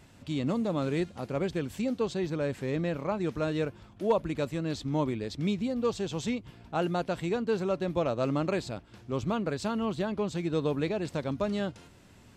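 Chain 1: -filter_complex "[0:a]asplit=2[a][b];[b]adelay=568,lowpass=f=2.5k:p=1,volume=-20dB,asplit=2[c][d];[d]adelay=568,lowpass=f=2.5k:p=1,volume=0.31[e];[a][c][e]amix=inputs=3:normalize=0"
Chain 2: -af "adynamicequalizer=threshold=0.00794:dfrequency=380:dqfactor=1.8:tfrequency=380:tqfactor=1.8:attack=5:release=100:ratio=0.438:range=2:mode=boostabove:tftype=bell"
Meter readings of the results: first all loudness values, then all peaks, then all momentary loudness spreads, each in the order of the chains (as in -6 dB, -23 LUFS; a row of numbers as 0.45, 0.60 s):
-31.5, -29.5 LUFS; -16.5, -13.5 dBFS; 6, 5 LU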